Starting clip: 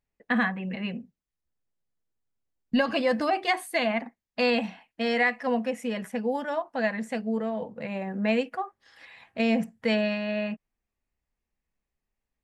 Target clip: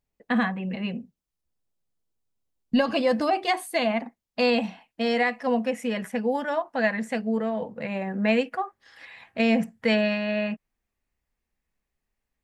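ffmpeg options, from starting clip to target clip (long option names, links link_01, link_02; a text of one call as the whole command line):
ffmpeg -i in.wav -af "asetnsamples=nb_out_samples=441:pad=0,asendcmd='5.67 equalizer g 2',equalizer=frequency=1800:width=1.5:gain=-5,volume=2.5dB" out.wav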